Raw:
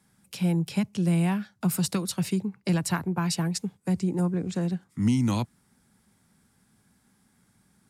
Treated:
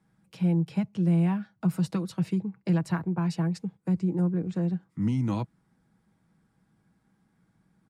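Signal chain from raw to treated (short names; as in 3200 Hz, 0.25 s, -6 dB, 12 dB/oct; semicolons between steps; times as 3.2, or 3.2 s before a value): LPF 1300 Hz 6 dB/oct; comb 6.2 ms, depth 39%; gain -2 dB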